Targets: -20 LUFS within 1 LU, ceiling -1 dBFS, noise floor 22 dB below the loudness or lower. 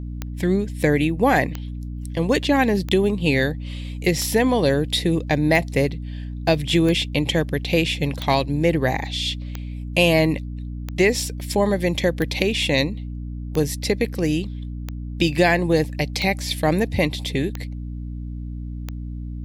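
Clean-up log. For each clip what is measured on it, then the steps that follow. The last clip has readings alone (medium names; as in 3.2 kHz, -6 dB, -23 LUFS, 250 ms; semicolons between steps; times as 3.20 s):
clicks found 15; hum 60 Hz; highest harmonic 300 Hz; hum level -28 dBFS; loudness -21.0 LUFS; peak level -3.0 dBFS; loudness target -20.0 LUFS
-> de-click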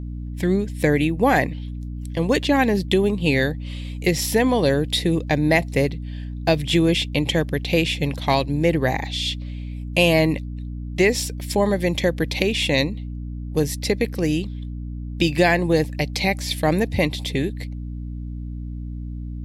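clicks found 0; hum 60 Hz; highest harmonic 300 Hz; hum level -28 dBFS
-> de-hum 60 Hz, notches 5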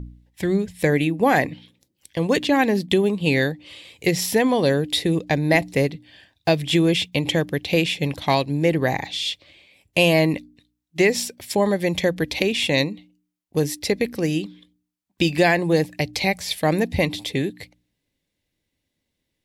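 hum not found; loudness -21.5 LUFS; peak level -4.0 dBFS; loudness target -20.0 LUFS
-> trim +1.5 dB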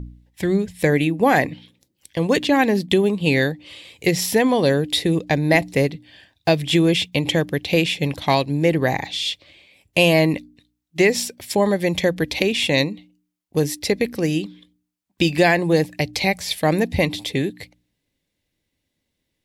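loudness -20.0 LUFS; peak level -2.5 dBFS; noise floor -77 dBFS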